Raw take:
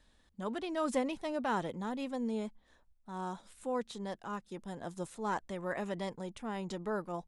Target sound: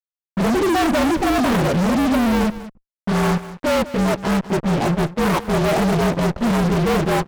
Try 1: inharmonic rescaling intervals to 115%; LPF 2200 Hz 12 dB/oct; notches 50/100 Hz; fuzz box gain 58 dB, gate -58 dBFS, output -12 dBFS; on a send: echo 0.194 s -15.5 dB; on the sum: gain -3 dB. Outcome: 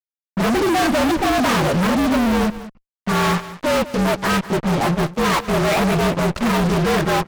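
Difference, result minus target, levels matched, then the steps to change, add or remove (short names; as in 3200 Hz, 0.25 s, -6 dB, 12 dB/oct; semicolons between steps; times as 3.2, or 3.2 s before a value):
2000 Hz band +2.5 dB
change: LPF 690 Hz 12 dB/oct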